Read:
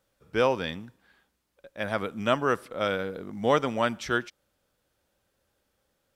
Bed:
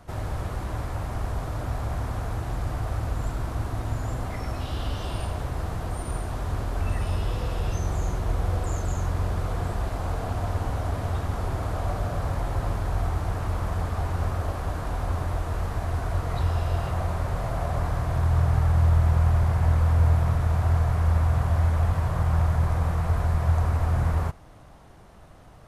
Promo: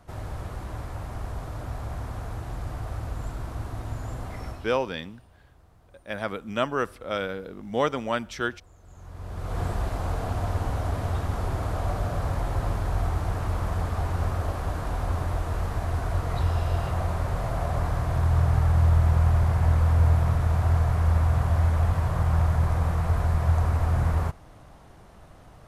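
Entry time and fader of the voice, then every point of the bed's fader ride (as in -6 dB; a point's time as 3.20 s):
4.30 s, -1.5 dB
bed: 4.48 s -4.5 dB
4.95 s -27 dB
8.76 s -27 dB
9.60 s 0 dB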